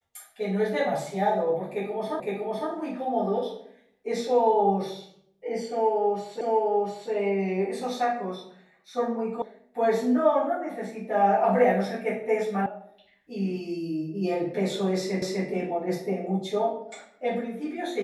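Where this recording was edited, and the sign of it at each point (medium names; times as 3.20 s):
2.20 s: repeat of the last 0.51 s
6.41 s: repeat of the last 0.7 s
9.42 s: sound stops dead
12.66 s: sound stops dead
15.22 s: repeat of the last 0.25 s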